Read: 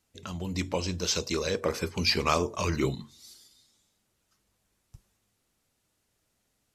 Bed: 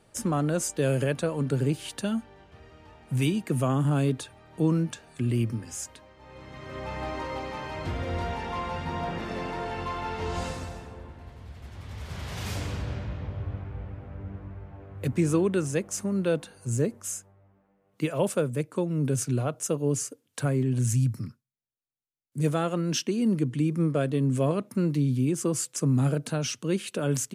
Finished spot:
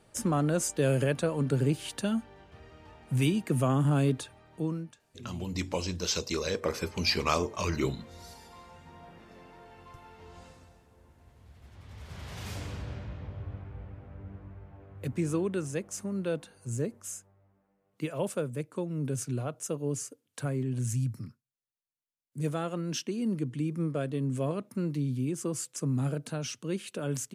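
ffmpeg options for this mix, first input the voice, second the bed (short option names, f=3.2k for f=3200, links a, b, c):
-filter_complex "[0:a]adelay=5000,volume=-2dB[a];[1:a]volume=12dB,afade=t=out:st=4.14:d=0.82:silence=0.125893,afade=t=in:st=10.87:d=1.41:silence=0.223872[b];[a][b]amix=inputs=2:normalize=0"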